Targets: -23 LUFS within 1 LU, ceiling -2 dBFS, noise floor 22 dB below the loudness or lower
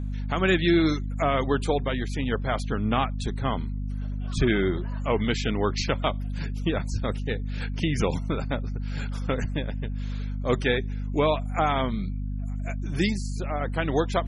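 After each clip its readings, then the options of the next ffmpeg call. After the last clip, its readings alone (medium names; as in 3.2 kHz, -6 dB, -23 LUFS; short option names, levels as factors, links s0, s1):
hum 50 Hz; highest harmonic 250 Hz; hum level -28 dBFS; loudness -27.0 LUFS; peak level -10.5 dBFS; loudness target -23.0 LUFS
-> -af "bandreject=f=50:t=h:w=4,bandreject=f=100:t=h:w=4,bandreject=f=150:t=h:w=4,bandreject=f=200:t=h:w=4,bandreject=f=250:t=h:w=4"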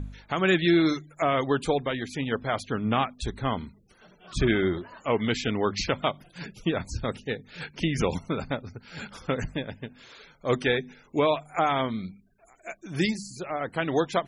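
hum not found; loudness -28.0 LUFS; peak level -11.5 dBFS; loudness target -23.0 LUFS
-> -af "volume=1.78"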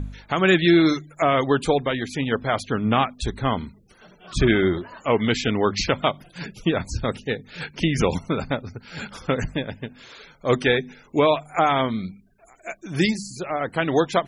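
loudness -23.0 LUFS; peak level -6.5 dBFS; noise floor -54 dBFS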